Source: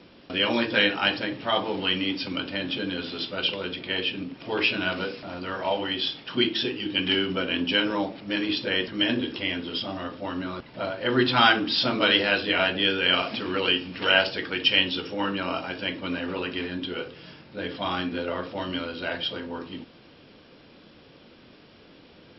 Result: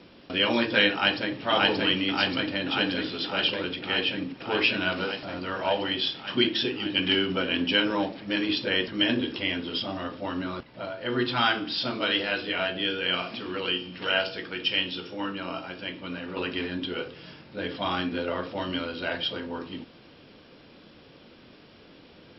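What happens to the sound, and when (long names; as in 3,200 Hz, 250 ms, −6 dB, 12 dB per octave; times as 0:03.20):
0:00.92–0:01.42: delay throw 580 ms, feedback 80%, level 0 dB
0:10.63–0:16.37: tuned comb filter 60 Hz, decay 0.5 s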